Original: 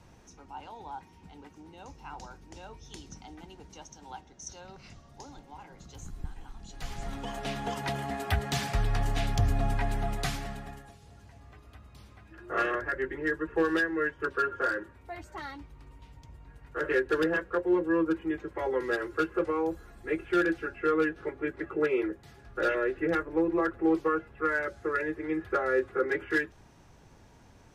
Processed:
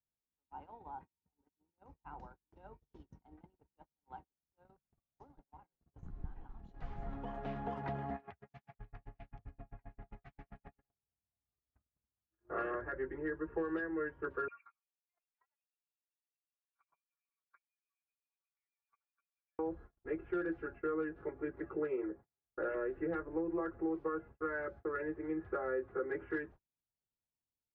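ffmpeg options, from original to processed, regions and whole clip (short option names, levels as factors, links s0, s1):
-filter_complex "[0:a]asettb=1/sr,asplit=3[s0][s1][s2];[s0]atrim=end=8.164[s3];[s1]atrim=start=8.16:end=10.83,asetpts=PTS-STARTPTS,afade=t=in:d=0.004:c=qsin,afade=t=out:st=2.666:d=0.004:c=qsin,equalizer=f=2300:t=o:w=0.85:g=8,acompressor=threshold=0.0158:ratio=16:attack=3.2:release=140:knee=1:detection=peak,aeval=exprs='val(0)*pow(10,-20*(0.5-0.5*cos(2*PI*7.6*n/s))/20)':c=same[s4];[s2]atrim=start=10.826[s5];[s3][s4]acrossfade=d=0.004:c1=hsin:c2=qsin[s6];[s6][s5]acrossfade=d=0.004:c1=qsin:c2=hsin,asettb=1/sr,asplit=3[s7][s8][s9];[s7]atrim=end=14.484[s10];[s8]atrim=start=14.48:end=19.59,asetpts=PTS-STARTPTS,afade=t=in:d=0.004:c=qsin,afade=t=out:st=5.106:d=0.004:c=qsin,acompressor=threshold=0.0141:ratio=12:attack=3.2:release=140:knee=1:detection=peak,acrossover=split=690[s11][s12];[s11]aeval=exprs='val(0)*(1-1/2+1/2*cos(2*PI*8*n/s))':c=same[s13];[s12]aeval=exprs='val(0)*(1-1/2-1/2*cos(2*PI*8*n/s))':c=same[s14];[s13][s14]amix=inputs=2:normalize=0,lowpass=f=2400:t=q:w=0.5098,lowpass=f=2400:t=q:w=0.6013,lowpass=f=2400:t=q:w=0.9,lowpass=f=2400:t=q:w=2.563,afreqshift=-2800[s15];[s9]atrim=start=19.586[s16];[s10][s15]acrossfade=d=0.004:c1=hsin:c2=qsin[s17];[s17][s16]acrossfade=d=0.004:c1=qsin:c2=hsin,asettb=1/sr,asplit=3[s18][s19][s20];[s18]atrim=end=21.964[s21];[s19]atrim=start=21.96:end=22.74,asetpts=PTS-STARTPTS,afade=t=in:d=0.004:c=qsin,afade=t=out:st=0.776:d=0.004:c=qsin,lowpass=2200,lowshelf=f=150:g=-6[s22];[s20]atrim=start=22.736[s23];[s21][s22]acrossfade=d=0.004:c1=hsin:c2=qsin[s24];[s24][s23]acrossfade=d=0.004:c1=qsin:c2=hsin,lowpass=1300,agate=range=0.00891:threshold=0.00562:ratio=16:detection=peak,acompressor=threshold=0.0447:ratio=6,volume=0.531"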